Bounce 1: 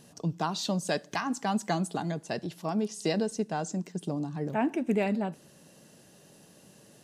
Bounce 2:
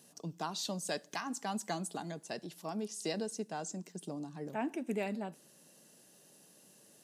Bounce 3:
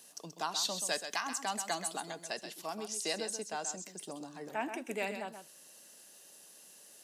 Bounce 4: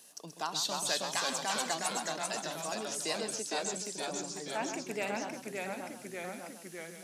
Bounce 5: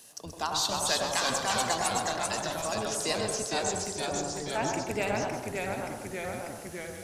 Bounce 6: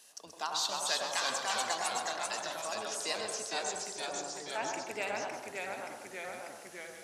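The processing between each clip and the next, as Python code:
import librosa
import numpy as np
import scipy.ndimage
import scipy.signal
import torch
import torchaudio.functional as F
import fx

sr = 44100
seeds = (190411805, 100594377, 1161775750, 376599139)

y1 = scipy.signal.sosfilt(scipy.signal.butter(2, 180.0, 'highpass', fs=sr, output='sos'), x)
y1 = fx.high_shelf(y1, sr, hz=6000.0, db=10.0)
y1 = y1 * 10.0 ** (-8.0 / 20.0)
y2 = fx.highpass(y1, sr, hz=1000.0, slope=6)
y2 = y2 + 10.0 ** (-9.0 / 20.0) * np.pad(y2, (int(130 * sr / 1000.0), 0))[:len(y2)]
y2 = y2 * 10.0 ** (6.0 / 20.0)
y3 = fx.echo_pitch(y2, sr, ms=276, semitones=-1, count=3, db_per_echo=-3.0)
y4 = fx.octave_divider(y3, sr, octaves=1, level_db=-2.0)
y4 = fx.echo_wet_bandpass(y4, sr, ms=94, feedback_pct=54, hz=760.0, wet_db=-3.5)
y4 = y4 * 10.0 ** (4.0 / 20.0)
y5 = fx.weighting(y4, sr, curve='A')
y5 = y5 * 10.0 ** (-4.5 / 20.0)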